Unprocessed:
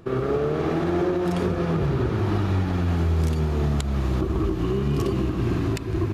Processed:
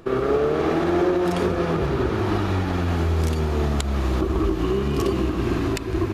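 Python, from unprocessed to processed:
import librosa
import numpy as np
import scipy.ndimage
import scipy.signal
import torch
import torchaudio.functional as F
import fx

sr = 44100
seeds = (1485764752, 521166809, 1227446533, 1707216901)

y = fx.peak_eq(x, sr, hz=130.0, db=-9.0, octaves=1.3)
y = y * 10.0 ** (4.5 / 20.0)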